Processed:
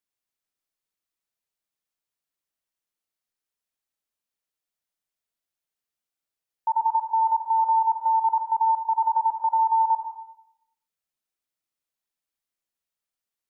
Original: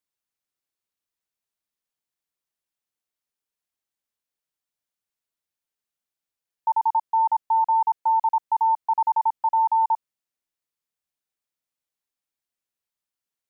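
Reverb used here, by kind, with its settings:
comb and all-pass reverb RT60 0.78 s, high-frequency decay 1×, pre-delay 35 ms, DRR 4 dB
level −2 dB

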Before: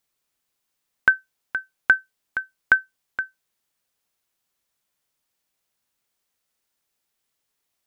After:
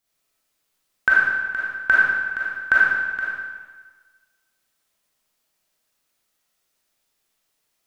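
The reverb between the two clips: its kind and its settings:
comb and all-pass reverb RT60 1.4 s, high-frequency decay 0.95×, pre-delay 0 ms, DRR −7.5 dB
level −2.5 dB

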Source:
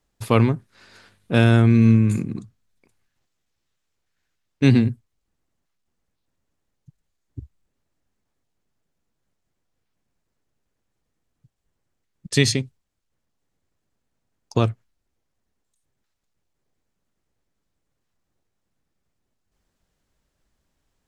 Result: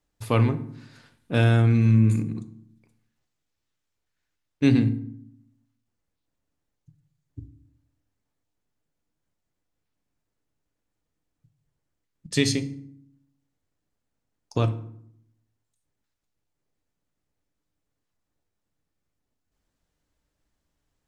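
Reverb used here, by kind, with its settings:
feedback delay network reverb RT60 0.66 s, low-frequency decay 1.5×, high-frequency decay 0.65×, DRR 8.5 dB
level −5 dB

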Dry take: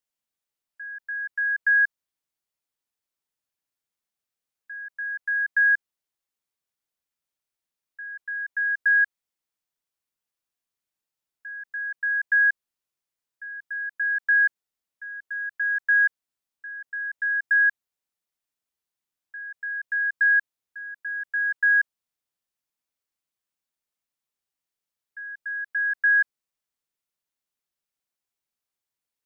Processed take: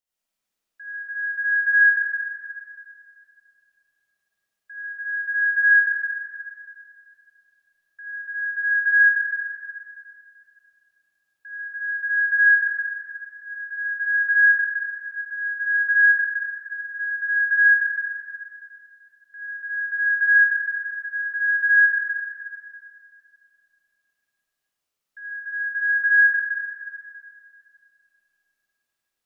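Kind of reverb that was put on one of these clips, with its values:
comb and all-pass reverb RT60 2.5 s, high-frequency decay 0.85×, pre-delay 35 ms, DRR −10 dB
level −3.5 dB

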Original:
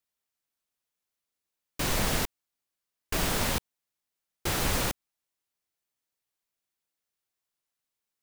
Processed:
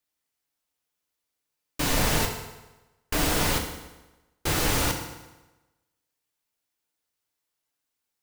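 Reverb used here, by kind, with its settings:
feedback delay network reverb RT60 1.1 s, low-frequency decay 0.95×, high-frequency decay 0.85×, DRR 2.5 dB
level +2 dB

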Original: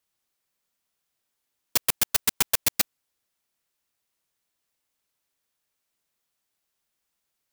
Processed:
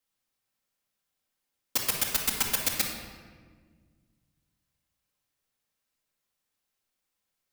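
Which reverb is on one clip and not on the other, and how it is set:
rectangular room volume 1,800 cubic metres, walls mixed, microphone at 2.1 metres
level −5.5 dB

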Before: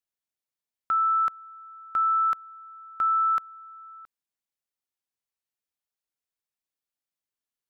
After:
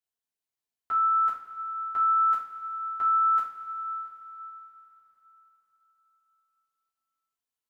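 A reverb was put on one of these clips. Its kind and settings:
coupled-rooms reverb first 0.36 s, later 4.2 s, from −18 dB, DRR −8 dB
level −9.5 dB

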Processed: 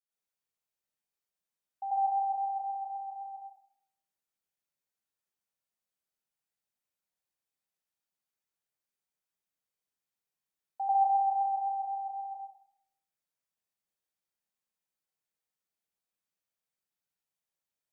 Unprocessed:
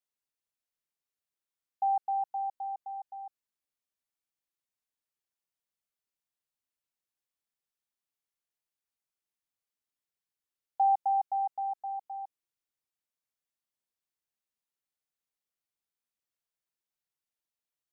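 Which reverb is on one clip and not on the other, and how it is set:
dense smooth reverb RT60 0.71 s, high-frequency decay 0.7×, pre-delay 80 ms, DRR −9 dB
level −9 dB

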